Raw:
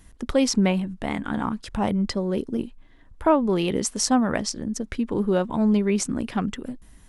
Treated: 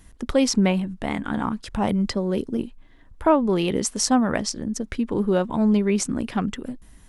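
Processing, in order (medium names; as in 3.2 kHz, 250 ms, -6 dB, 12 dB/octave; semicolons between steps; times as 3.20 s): 1.89–2.47 s: three bands compressed up and down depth 40%; trim +1 dB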